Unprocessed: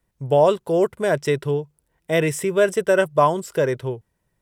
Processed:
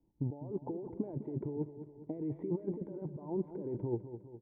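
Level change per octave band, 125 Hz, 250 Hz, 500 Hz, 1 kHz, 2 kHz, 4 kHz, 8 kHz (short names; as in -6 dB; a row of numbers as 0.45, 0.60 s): -12.0 dB, -10.5 dB, -22.0 dB, -29.5 dB, under -40 dB, under -40 dB, under -40 dB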